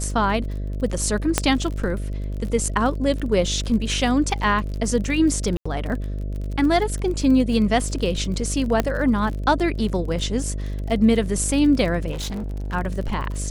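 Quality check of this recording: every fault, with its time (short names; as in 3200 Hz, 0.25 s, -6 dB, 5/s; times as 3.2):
buzz 50 Hz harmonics 13 -27 dBFS
crackle 39/s -29 dBFS
1.38 pop -2 dBFS
5.57–5.66 gap 85 ms
8.8 pop -6 dBFS
12.11–12.75 clipped -25.5 dBFS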